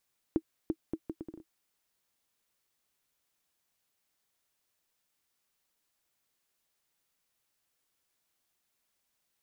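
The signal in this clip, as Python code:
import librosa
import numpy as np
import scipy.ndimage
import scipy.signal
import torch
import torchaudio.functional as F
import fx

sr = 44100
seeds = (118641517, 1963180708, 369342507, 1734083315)

y = fx.bouncing_ball(sr, first_gap_s=0.34, ratio=0.69, hz=321.0, decay_ms=59.0, level_db=-16.5)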